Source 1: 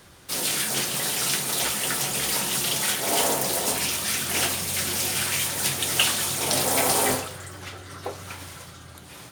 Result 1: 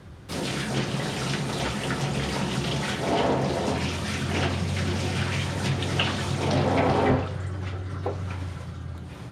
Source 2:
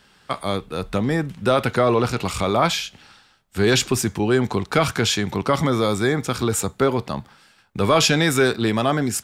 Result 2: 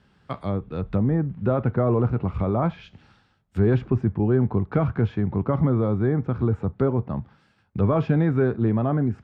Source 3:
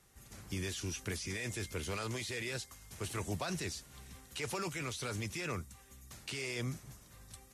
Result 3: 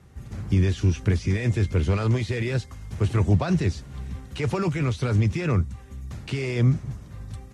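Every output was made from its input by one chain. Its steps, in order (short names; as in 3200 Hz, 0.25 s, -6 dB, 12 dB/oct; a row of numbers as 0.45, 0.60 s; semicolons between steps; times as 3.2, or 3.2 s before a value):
HPF 76 Hz 12 dB/oct; RIAA curve playback; treble ducked by the level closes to 1400 Hz, closed at -14 dBFS; normalise peaks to -9 dBFS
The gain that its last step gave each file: +0.5, -7.5, +9.5 dB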